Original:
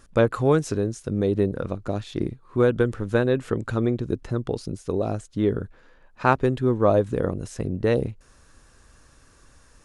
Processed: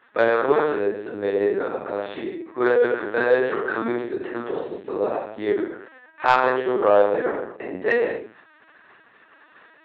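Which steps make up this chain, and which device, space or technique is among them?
low-pass 2.3 kHz 6 dB/octave; 6.63–7.78 s: gate -27 dBFS, range -22 dB; gated-style reverb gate 280 ms falling, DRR -7.5 dB; talking toy (LPC vocoder at 8 kHz pitch kept; high-pass 490 Hz 12 dB/octave; peaking EQ 1.8 kHz +8 dB 0.42 oct; saturation -5.5 dBFS, distortion -18 dB)

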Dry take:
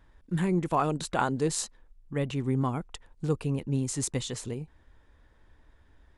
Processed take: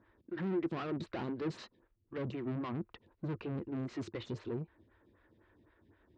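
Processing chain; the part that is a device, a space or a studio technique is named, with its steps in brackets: vibe pedal into a guitar amplifier (lamp-driven phase shifter 3.9 Hz; valve stage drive 38 dB, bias 0.4; cabinet simulation 81–4100 Hz, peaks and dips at 100 Hz +9 dB, 210 Hz +5 dB, 340 Hz +10 dB, 800 Hz -5 dB, 3.3 kHz -3 dB); trim +1 dB

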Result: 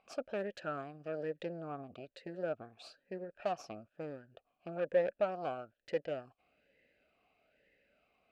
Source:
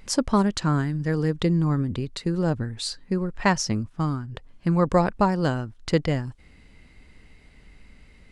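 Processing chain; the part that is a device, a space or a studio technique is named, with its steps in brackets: talk box (valve stage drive 20 dB, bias 0.7; talking filter a-e 1.1 Hz); trim +3 dB

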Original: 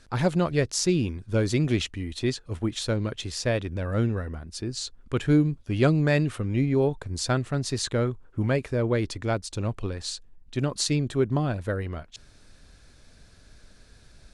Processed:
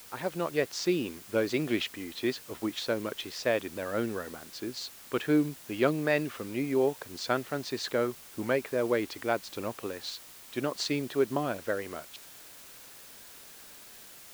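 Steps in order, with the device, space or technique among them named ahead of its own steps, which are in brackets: dictaphone (band-pass 320–3900 Hz; level rider gain up to 7.5 dB; wow and flutter; white noise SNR 18 dB); trim -7.5 dB

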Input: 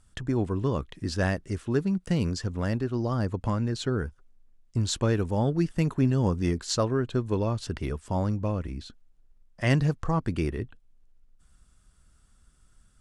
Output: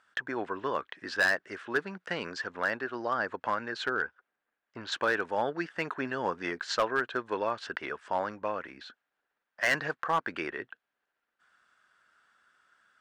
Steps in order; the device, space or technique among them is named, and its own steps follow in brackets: megaphone (band-pass 650–3100 Hz; peaking EQ 1.6 kHz +9.5 dB 0.49 oct; hard clipper -23 dBFS, distortion -13 dB); 3.89–4.92 s: distance through air 130 m; trim +4 dB

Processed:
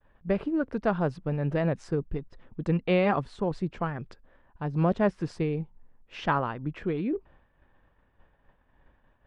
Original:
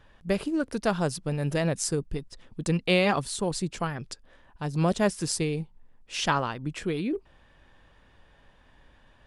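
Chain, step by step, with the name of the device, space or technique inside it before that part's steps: hearing-loss simulation (low-pass 1.8 kHz 12 dB/octave; expander -51 dBFS)

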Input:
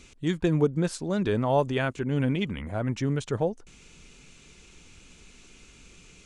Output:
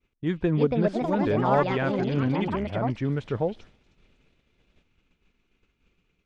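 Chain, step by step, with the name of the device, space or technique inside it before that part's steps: repeats whose band climbs or falls 315 ms, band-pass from 3.5 kHz, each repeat 0.7 oct, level -3.5 dB; ever faster or slower copies 410 ms, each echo +6 st, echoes 2; hearing-loss simulation (low-pass 2.4 kHz 12 dB/octave; expander -41 dBFS)

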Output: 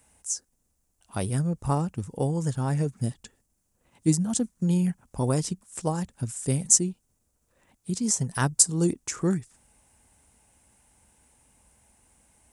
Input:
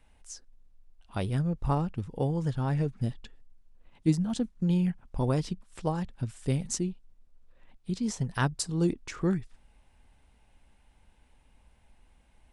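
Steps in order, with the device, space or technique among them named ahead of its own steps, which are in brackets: budget condenser microphone (high-pass 76 Hz 12 dB/octave; resonant high shelf 5.3 kHz +12.5 dB, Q 1.5); trim +2.5 dB

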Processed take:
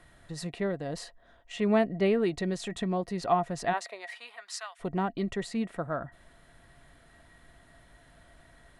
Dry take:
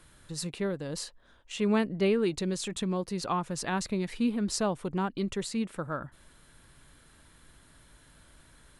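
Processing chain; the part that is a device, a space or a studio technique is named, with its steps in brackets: inside a helmet (treble shelf 5 kHz -9.5 dB; small resonant body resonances 690/1900 Hz, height 16 dB, ringing for 65 ms); 3.72–4.79 s: high-pass 440 Hz -> 1.5 kHz 24 dB/octave

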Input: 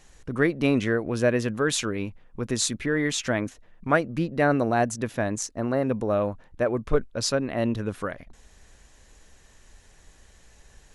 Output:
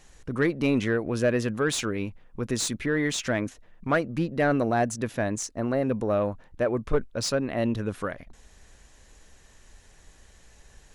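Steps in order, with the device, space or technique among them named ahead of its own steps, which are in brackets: saturation between pre-emphasis and de-emphasis (treble shelf 2.3 kHz +11.5 dB; saturation -12.5 dBFS, distortion -16 dB; treble shelf 2.3 kHz -11.5 dB)

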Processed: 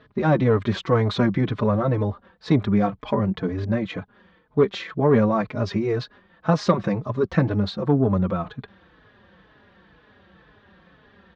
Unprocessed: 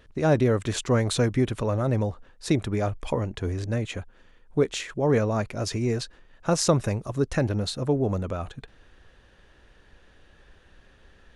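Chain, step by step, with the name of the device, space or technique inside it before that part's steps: barber-pole flanger into a guitar amplifier (endless flanger 4.2 ms -2 Hz; saturation -16 dBFS, distortion -19 dB; cabinet simulation 98–3900 Hz, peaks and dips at 190 Hz +9 dB, 1.1 kHz +5 dB, 2.7 kHz -6 dB); trim +7 dB

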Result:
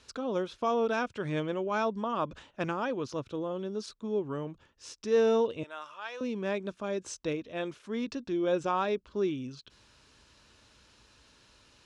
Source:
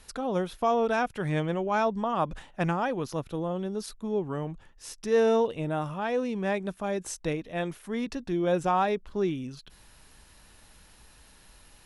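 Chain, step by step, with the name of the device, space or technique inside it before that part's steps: 5.63–6.21 s: high-pass 1.1 kHz 12 dB/octave; car door speaker (cabinet simulation 81–7000 Hz, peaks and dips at 170 Hz -9 dB, 770 Hz -9 dB, 1.9 kHz -6 dB); trim -1 dB

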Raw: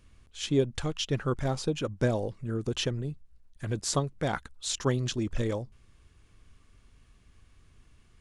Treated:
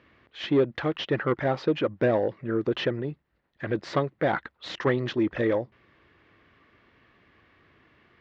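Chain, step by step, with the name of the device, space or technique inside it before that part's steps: overdrive pedal into a guitar cabinet (overdrive pedal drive 18 dB, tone 1.1 kHz, clips at -13.5 dBFS; cabinet simulation 92–4400 Hz, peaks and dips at 330 Hz +5 dB, 560 Hz +3 dB, 1.9 kHz +8 dB)

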